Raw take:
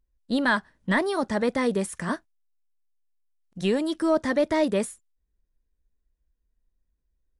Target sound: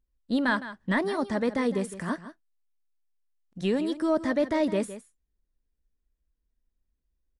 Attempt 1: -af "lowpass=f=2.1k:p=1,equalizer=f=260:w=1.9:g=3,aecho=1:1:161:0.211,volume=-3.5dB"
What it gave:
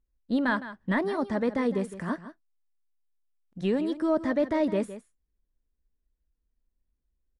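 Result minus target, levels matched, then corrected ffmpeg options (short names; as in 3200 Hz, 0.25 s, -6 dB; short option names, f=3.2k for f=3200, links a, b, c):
8000 Hz band -7.5 dB
-af "lowpass=f=6.7k:p=1,equalizer=f=260:w=1.9:g=3,aecho=1:1:161:0.211,volume=-3.5dB"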